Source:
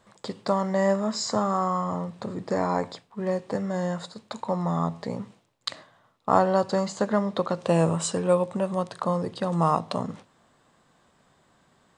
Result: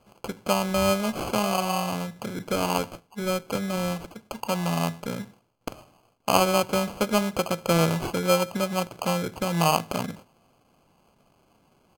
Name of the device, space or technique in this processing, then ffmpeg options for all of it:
crushed at another speed: -af "asetrate=55125,aresample=44100,acrusher=samples=19:mix=1:aa=0.000001,asetrate=35280,aresample=44100"

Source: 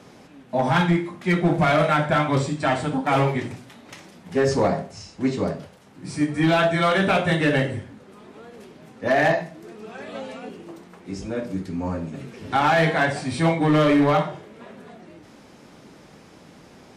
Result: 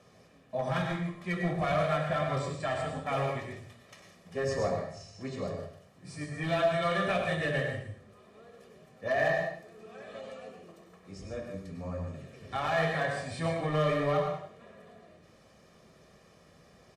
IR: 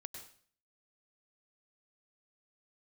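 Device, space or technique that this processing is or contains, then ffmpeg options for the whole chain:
microphone above a desk: -filter_complex "[0:a]aecho=1:1:1.7:0.59[s0];[1:a]atrim=start_sample=2205[s1];[s0][s1]afir=irnorm=-1:irlink=0,volume=0.447"

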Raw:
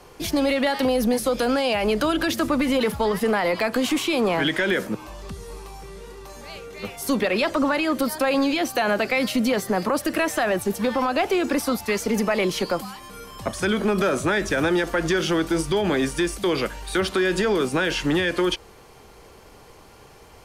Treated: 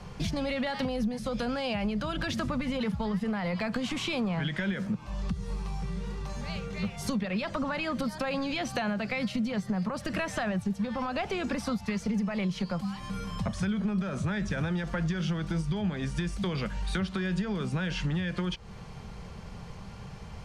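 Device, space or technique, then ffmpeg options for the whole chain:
jukebox: -af "lowpass=6300,lowshelf=f=240:t=q:w=3:g=8.5,acompressor=threshold=0.0355:ratio=5"

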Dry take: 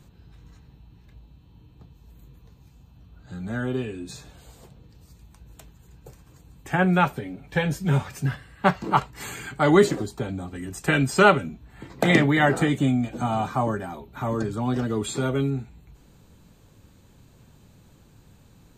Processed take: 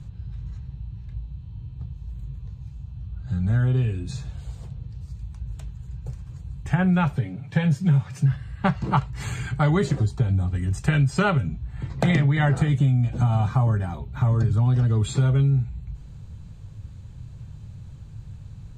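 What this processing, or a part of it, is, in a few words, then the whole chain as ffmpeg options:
jukebox: -filter_complex "[0:a]asettb=1/sr,asplit=3[s0][s1][s2];[s0]atrim=end=7.164[s3];[s1]atrim=start=7.16:end=8.32,asetpts=PTS-STARTPTS,afade=t=in:d=0.004:c=qsin,afade=t=out:st=1.156:d=0.004:c=qsin,highpass=f=110:w=0.5412,highpass=f=110:w=1.3066[s4];[s2]atrim=start=8.316[s5];[s3][s4]acrossfade=d=0.004:c1=hsin:c2=qsin[s6];[s6][s5]acrossfade=d=0.004:c1=qsin:c2=hsin,lowpass=8000,lowshelf=f=180:t=q:w=1.5:g=14,acompressor=threshold=0.141:ratio=5"

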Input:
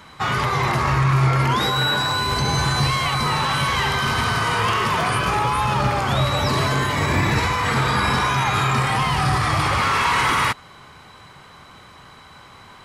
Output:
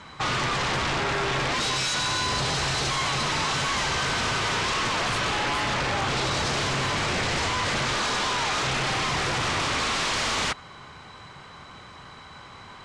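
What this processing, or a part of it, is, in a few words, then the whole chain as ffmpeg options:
synthesiser wavefolder: -filter_complex "[0:a]asettb=1/sr,asplit=3[s0][s1][s2];[s0]atrim=end=7.954[s3];[s1]atrim=start=7.95:end=8.63,asetpts=PTS-STARTPTS,afade=t=in:d=0.004:c=qsin,afade=t=out:st=0.676:d=0.004:c=qsin,highpass=270[s4];[s2]atrim=start=8.626[s5];[s3][s4]acrossfade=d=0.004:c1=hsin:c2=qsin[s6];[s6][s5]acrossfade=d=0.004:c1=qsin:c2=hsin,aeval=exprs='0.0891*(abs(mod(val(0)/0.0891+3,4)-2)-1)':c=same,lowpass=f=8100:w=0.5412,lowpass=f=8100:w=1.3066"

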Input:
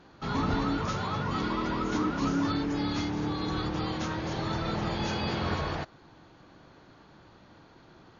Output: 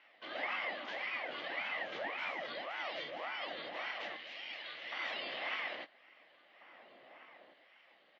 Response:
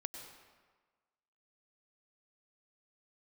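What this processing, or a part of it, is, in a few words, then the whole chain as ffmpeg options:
voice changer toy: -filter_complex "[0:a]asplit=2[s0][s1];[s1]adelay=20,volume=0.355[s2];[s0][s2]amix=inputs=2:normalize=0,asettb=1/sr,asplit=3[s3][s4][s5];[s3]atrim=end=4.164[s6];[s4]atrim=start=4.16:end=4.92,asetpts=PTS-STARTPTS,afade=t=in:d=0.004:c=qsin,afade=t=out:st=0.756:d=0.004:c=qsin,highpass=1300[s7];[s5]atrim=start=4.916[s8];[s6][s7]acrossfade=d=0.004:c1=hsin:c2=qsin[s9];[s9][s8]acrossfade=d=0.004:c1=qsin:c2=hsin,aeval=exprs='val(0)*sin(2*PI*670*n/s+670*0.8/1.8*sin(2*PI*1.8*n/s))':c=same,highpass=f=240:p=1,highpass=400,equalizer=f=420:t=q:w=4:g=-10,equalizer=f=590:t=q:w=4:g=3,equalizer=f=950:t=q:w=4:g=-8,equalizer=f=1400:t=q:w=4:g=-7,equalizer=f=2000:t=q:w=4:g=9,equalizer=f=3000:t=q:w=4:g=9,lowpass=f=4100:w=0.5412,lowpass=f=4100:w=1.3066,asplit=2[s10][s11];[s11]adelay=1691,volume=0.251,highshelf=f=4000:g=-38[s12];[s10][s12]amix=inputs=2:normalize=0,volume=0.473"

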